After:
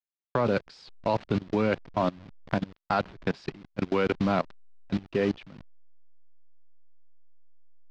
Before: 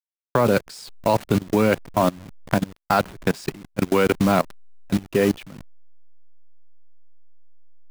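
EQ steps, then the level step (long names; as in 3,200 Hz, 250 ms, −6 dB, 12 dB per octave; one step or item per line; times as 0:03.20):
low-pass filter 4,800 Hz 24 dB per octave
−7.0 dB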